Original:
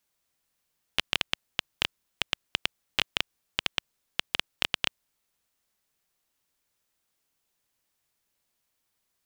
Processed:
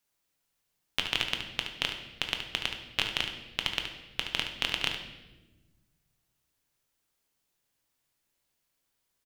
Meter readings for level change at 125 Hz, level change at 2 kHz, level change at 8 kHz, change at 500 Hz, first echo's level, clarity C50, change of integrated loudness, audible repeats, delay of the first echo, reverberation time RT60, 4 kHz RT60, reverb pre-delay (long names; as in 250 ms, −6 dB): +1.5 dB, −0.5 dB, −1.0 dB, −0.5 dB, −9.5 dB, 5.5 dB, −0.5 dB, 1, 72 ms, 1.1 s, 0.95 s, 7 ms